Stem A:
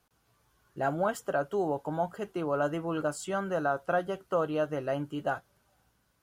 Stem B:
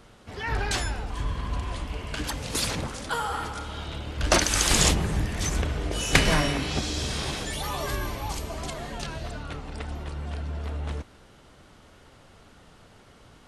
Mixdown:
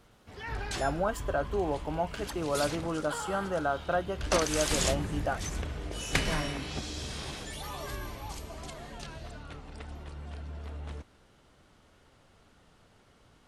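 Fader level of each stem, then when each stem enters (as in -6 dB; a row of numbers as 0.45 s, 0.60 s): -1.0 dB, -8.5 dB; 0.00 s, 0.00 s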